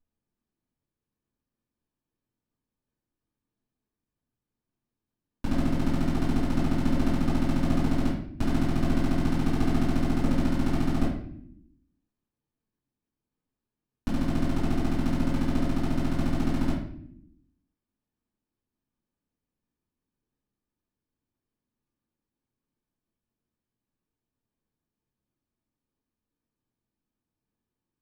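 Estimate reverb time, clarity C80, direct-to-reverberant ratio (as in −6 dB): 0.65 s, 7.0 dB, −12.0 dB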